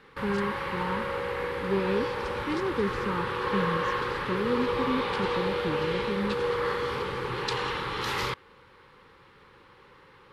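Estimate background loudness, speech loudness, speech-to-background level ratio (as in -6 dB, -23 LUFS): -30.5 LUFS, -33.0 LUFS, -2.5 dB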